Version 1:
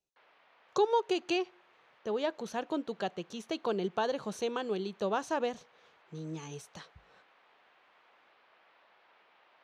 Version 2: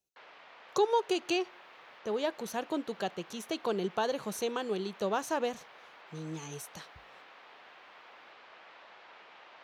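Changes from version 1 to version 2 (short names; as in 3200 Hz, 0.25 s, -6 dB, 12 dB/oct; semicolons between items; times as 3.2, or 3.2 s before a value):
background +10.0 dB; master: remove air absorption 66 m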